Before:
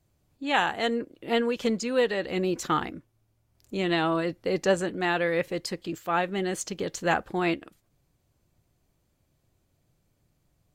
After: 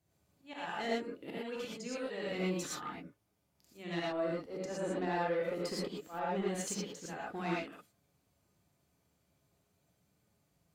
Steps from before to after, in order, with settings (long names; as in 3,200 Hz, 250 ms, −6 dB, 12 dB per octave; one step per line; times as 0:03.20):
high-pass filter 91 Hz 12 dB per octave
0:04.00–0:06.48: parametric band 470 Hz +8.5 dB 2.4 octaves
volume swells 423 ms
downward compressor 10 to 1, threshold −27 dBFS, peak gain reduction 13 dB
soft clipping −24.5 dBFS, distortion −18 dB
reverb whose tail is shaped and stops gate 140 ms rising, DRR −5.5 dB
level −7.5 dB